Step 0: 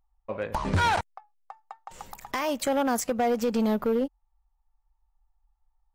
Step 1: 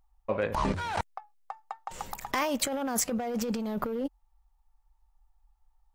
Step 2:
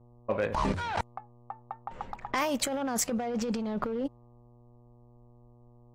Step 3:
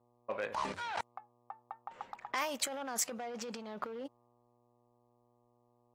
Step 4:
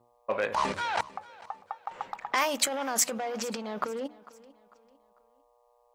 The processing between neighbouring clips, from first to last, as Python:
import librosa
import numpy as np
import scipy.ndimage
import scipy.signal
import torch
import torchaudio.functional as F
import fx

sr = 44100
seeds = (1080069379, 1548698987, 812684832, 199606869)

y1 = fx.over_compress(x, sr, threshold_db=-30.0, ratio=-1.0)
y2 = fx.dmg_buzz(y1, sr, base_hz=120.0, harmonics=10, level_db=-57.0, tilt_db=-6, odd_only=False)
y2 = np.clip(y2, -10.0 ** (-19.0 / 20.0), 10.0 ** (-19.0 / 20.0))
y2 = fx.env_lowpass(y2, sr, base_hz=840.0, full_db=-24.5)
y3 = fx.highpass(y2, sr, hz=810.0, slope=6)
y3 = F.gain(torch.from_numpy(y3), -3.5).numpy()
y4 = fx.hum_notches(y3, sr, base_hz=60, count=6)
y4 = fx.echo_feedback(y4, sr, ms=448, feedback_pct=38, wet_db=-20.5)
y4 = F.gain(torch.from_numpy(y4), 8.5).numpy()